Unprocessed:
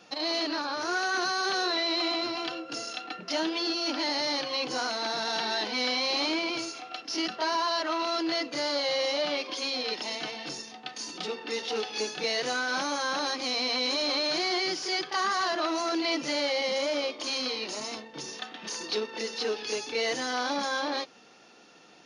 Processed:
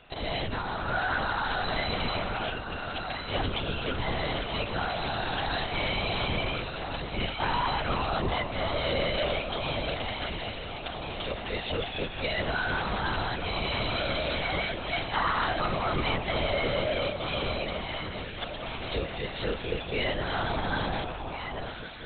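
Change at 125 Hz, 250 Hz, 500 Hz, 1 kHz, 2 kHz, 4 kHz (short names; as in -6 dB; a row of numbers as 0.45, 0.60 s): +22.0, -1.5, -0.5, +1.0, +0.5, -4.0 dB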